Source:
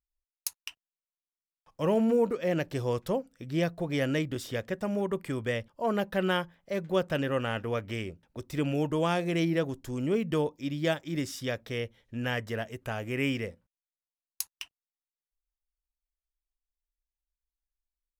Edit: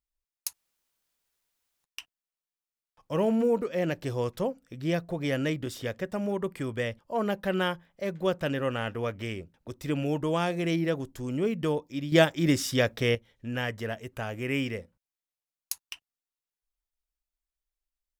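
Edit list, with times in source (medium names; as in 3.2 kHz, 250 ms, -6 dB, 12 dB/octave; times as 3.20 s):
0.53 s: insert room tone 1.31 s
10.81–11.84 s: gain +8 dB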